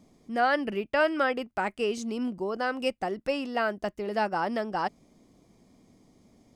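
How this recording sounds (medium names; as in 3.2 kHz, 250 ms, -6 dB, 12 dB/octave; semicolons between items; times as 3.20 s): noise floor -64 dBFS; spectral tilt -2.5 dB/octave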